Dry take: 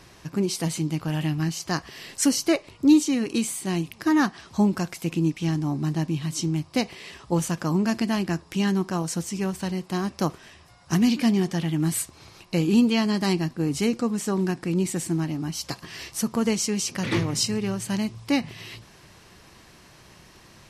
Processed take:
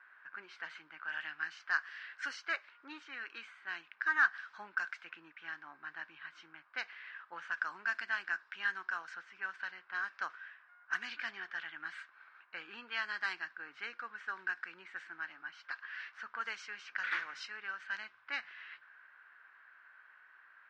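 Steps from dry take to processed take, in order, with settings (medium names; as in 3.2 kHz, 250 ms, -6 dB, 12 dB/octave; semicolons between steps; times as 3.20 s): ladder band-pass 1.6 kHz, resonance 80%; level-controlled noise filter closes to 1.5 kHz, open at -35.5 dBFS; trim +3.5 dB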